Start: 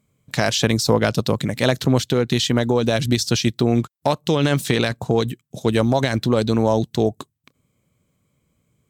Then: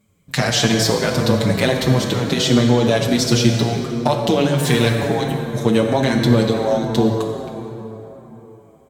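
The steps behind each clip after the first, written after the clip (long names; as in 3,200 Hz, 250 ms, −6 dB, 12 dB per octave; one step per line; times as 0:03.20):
downward compressor, threshold −18 dBFS, peak gain reduction 8 dB
dense smooth reverb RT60 3.7 s, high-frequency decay 0.5×, DRR 1.5 dB
barber-pole flanger 6.6 ms −1.4 Hz
level +7.5 dB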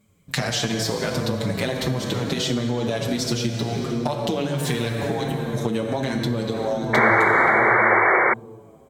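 downward compressor, threshold −21 dBFS, peak gain reduction 12.5 dB
sound drawn into the spectrogram noise, 0:06.93–0:08.34, 320–2,300 Hz −17 dBFS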